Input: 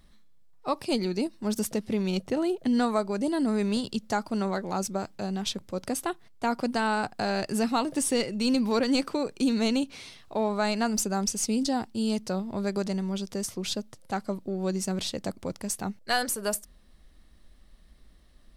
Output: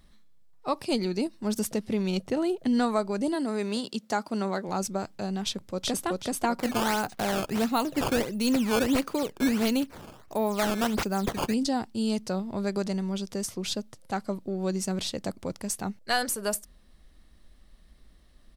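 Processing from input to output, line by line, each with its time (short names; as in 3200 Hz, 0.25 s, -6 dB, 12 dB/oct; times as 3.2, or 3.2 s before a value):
3.34–4.67 HPF 310 Hz -> 140 Hz
5.45–6.07 echo throw 0.38 s, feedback 35%, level -0.5 dB
6.59–11.54 decimation with a swept rate 13×, swing 160% 1.5 Hz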